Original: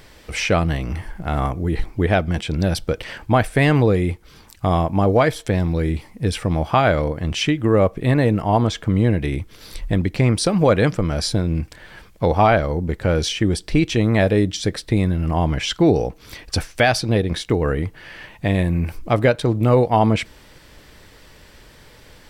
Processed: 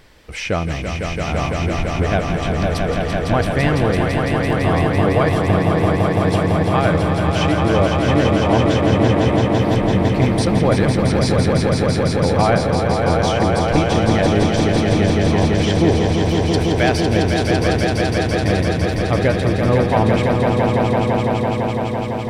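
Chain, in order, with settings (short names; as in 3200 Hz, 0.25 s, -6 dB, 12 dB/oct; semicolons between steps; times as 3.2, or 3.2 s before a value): high shelf 6000 Hz -5 dB; on a send: swelling echo 0.168 s, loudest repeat 5, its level -5 dB; on the sum: gain -2.5 dB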